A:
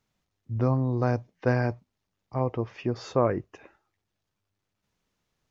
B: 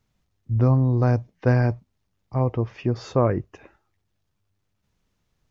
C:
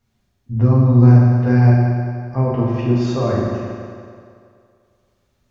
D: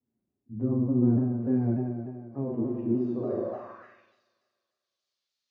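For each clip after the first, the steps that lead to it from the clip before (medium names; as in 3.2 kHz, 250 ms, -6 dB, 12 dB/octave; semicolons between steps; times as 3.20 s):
bass shelf 150 Hz +10.5 dB; trim +1.5 dB
peak limiter -14.5 dBFS, peak gain reduction 7 dB; reverberation RT60 2.3 s, pre-delay 4 ms, DRR -7 dB; trim -1 dB
band-pass sweep 300 Hz -> 4.4 kHz, 3.25–4.22 s; vibrato with a chosen wave saw down 3.4 Hz, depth 100 cents; trim -5 dB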